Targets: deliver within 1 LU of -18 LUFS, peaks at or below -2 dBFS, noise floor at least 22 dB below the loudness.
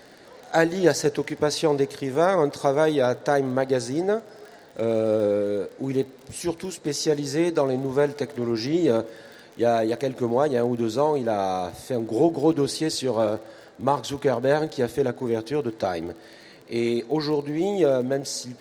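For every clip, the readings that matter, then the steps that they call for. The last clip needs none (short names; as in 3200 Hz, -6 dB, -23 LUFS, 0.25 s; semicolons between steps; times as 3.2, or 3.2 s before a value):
ticks 36/s; loudness -24.0 LUFS; peak -4.5 dBFS; loudness target -18.0 LUFS
-> de-click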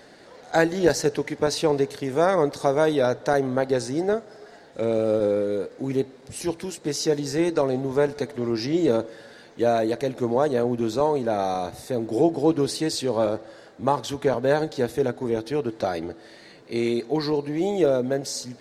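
ticks 0/s; loudness -24.5 LUFS; peak -4.5 dBFS; loudness target -18.0 LUFS
-> gain +6.5 dB; limiter -2 dBFS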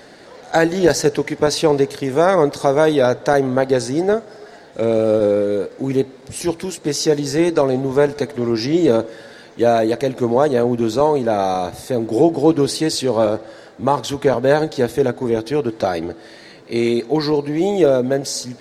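loudness -18.0 LUFS; peak -2.0 dBFS; noise floor -42 dBFS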